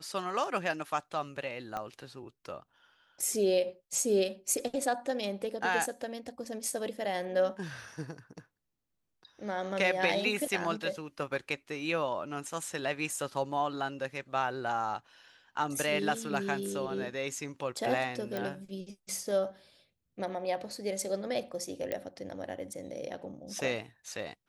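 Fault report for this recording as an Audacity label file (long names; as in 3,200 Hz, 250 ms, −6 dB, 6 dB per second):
1.770000	1.770000	click −23 dBFS
18.370000	18.370000	click
21.920000	21.920000	click −20 dBFS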